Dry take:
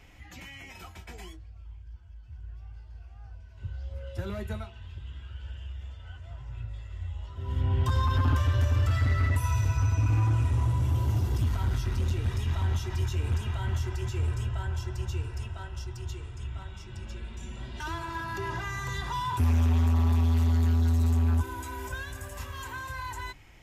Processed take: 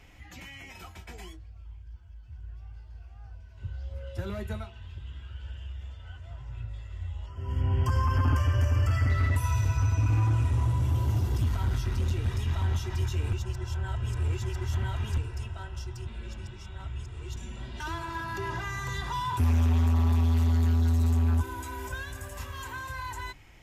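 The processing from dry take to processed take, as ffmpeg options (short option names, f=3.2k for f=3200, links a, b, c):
-filter_complex "[0:a]asettb=1/sr,asplit=3[a][b][c];[a]atrim=end=7.264[d];[b]atrim=start=7.26:end=9.1,asetpts=PTS-STARTPTS,afade=t=in:d=0.004:c=qsin,afade=t=out:st=1.836:d=0.004:c=qsin,asuperstop=centerf=3800:order=12:qfactor=3.3[e];[c]atrim=start=9.096[f];[d][e]acrossfade=d=0.004:c1=hsin:c2=qsin[g];[g][f]acrossfade=d=0.004:c1=qsin:c2=hsin,asplit=5[h][i][j][k][l];[h]atrim=end=13.332[m];[i]atrim=start=13.328:end=15.182,asetpts=PTS-STARTPTS,areverse[n];[j]atrim=start=15.178:end=16.072[o];[k]atrim=start=16.068:end=17.362,asetpts=PTS-STARTPTS,areverse[p];[l]atrim=start=17.358[q];[m][n]acrossfade=d=0.004:c1=hsin:c2=hsin[r];[r][o]acrossfade=d=0.004:c1=hsin:c2=hsin[s];[s][p]acrossfade=d=0.004:c1=hsin:c2=hsin[t];[t][q]acrossfade=d=0.004:c1=hsin:c2=hsin"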